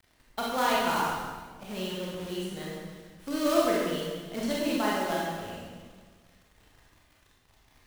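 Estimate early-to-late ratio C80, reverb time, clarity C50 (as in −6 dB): 1.0 dB, 1.5 s, −2.0 dB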